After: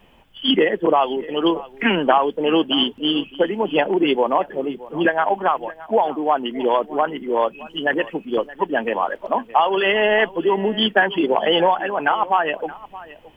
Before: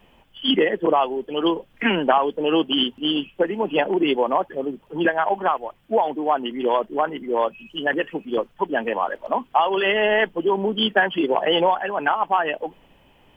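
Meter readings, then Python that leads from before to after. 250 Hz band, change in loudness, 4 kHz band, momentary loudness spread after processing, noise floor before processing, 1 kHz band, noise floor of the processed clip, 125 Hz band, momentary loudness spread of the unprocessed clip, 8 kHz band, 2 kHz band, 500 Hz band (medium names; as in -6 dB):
+2.0 dB, +2.0 dB, +2.0 dB, 7 LU, -57 dBFS, +2.0 dB, -49 dBFS, +2.0 dB, 7 LU, no reading, +2.0 dB, +2.0 dB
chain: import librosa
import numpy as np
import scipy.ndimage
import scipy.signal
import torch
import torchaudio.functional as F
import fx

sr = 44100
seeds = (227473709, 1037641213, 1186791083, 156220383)

y = x + 10.0 ** (-18.5 / 20.0) * np.pad(x, (int(621 * sr / 1000.0), 0))[:len(x)]
y = y * 10.0 ** (2.0 / 20.0)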